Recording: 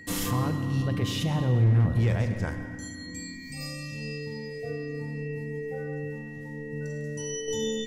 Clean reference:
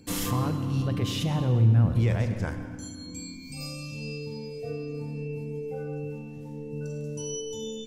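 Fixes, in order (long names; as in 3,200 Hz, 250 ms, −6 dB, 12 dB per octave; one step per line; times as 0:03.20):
clipped peaks rebuilt −17 dBFS
notch filter 1,900 Hz, Q 30
level correction −6 dB, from 0:07.48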